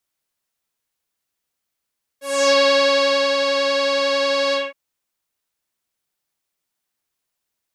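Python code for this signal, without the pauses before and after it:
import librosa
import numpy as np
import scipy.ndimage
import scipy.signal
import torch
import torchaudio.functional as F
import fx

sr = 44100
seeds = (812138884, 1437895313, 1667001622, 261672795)

y = fx.sub_patch_pwm(sr, seeds[0], note=73, wave2='saw', interval_st=7, detune_cents=27, level2_db=-18, sub_db=-15, noise_db=-24.0, kind='lowpass', cutoff_hz=2200.0, q=2.8, env_oct=2.5, env_decay_s=0.34, env_sustain_pct=40, attack_ms=277.0, decay_s=0.86, sustain_db=-5.0, release_s=0.19, note_s=2.33, lfo_hz=11.0, width_pct=38, width_swing_pct=10)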